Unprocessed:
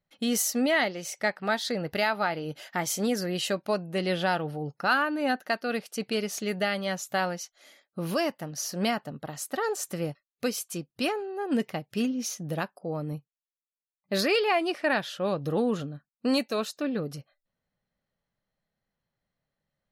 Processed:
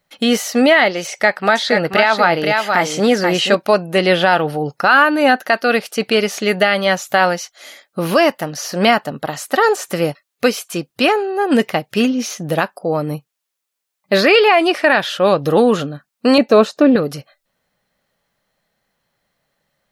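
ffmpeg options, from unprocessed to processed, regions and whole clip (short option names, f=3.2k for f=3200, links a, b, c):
-filter_complex "[0:a]asettb=1/sr,asplit=3[a][b][c];[a]atrim=end=1.074[d];[b]atrim=start=1.07:end=3.55,asetpts=PTS-STARTPTS,afade=t=in:d=0.004:c=qsin,afade=t=out:st=2.476:d=0.004:c=qsin,acrossover=split=9200[e][f];[f]acompressor=threshold=-58dB:ratio=4:attack=1:release=60[g];[e][g]amix=inputs=2:normalize=0,aecho=1:1:483:0.447,atrim=end_sample=109368[h];[c]atrim=start=3.546[i];[d][h]acrossfade=d=0.004:c1=hsin:c2=qsin[j];[j][i]acrossfade=d=0.004:c1=qsin:c2=hsin,asettb=1/sr,asplit=3[k][l][m];[k]atrim=end=16.384[n];[l]atrim=start=16.38:end=16.96,asetpts=PTS-STARTPTS,afade=t=in:d=0.004:c=qsin,afade=t=out:st=0.576:d=0.004:c=qsin,acrossover=split=8700[o][p];[p]acompressor=threshold=-59dB:ratio=4:attack=1:release=60[q];[o][q]amix=inputs=2:normalize=0,tiltshelf=f=1.3k:g=8[r];[m]atrim=start=16.956[s];[n][r]acrossfade=d=0.004:c1=hsin:c2=qsin[t];[t][s]acrossfade=d=0.004:c1=qsin:c2=hsin,lowshelf=f=260:g=-11,acrossover=split=3500[u][v];[v]acompressor=threshold=-46dB:ratio=4:attack=1:release=60[w];[u][w]amix=inputs=2:normalize=0,alimiter=level_in=18.5dB:limit=-1dB:release=50:level=0:latency=1,volume=-1dB"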